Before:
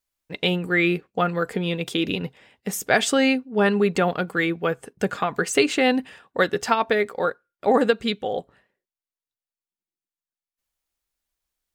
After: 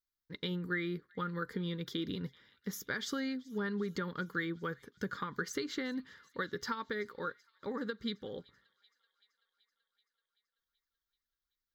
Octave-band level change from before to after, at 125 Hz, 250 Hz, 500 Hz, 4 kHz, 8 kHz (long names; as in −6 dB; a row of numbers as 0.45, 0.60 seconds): −11.5, −14.0, −19.0, −15.0, −17.0 decibels